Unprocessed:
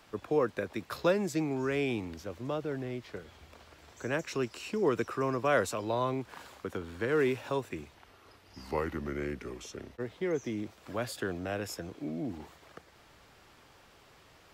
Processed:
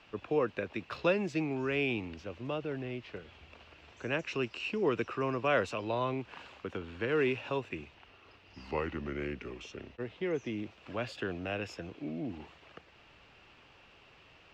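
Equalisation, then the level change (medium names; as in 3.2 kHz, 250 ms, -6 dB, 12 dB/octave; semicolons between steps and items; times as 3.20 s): distance through air 170 m; peaking EQ 2.7 kHz +11.5 dB 0.37 oct; treble shelf 4.4 kHz +5 dB; -1.5 dB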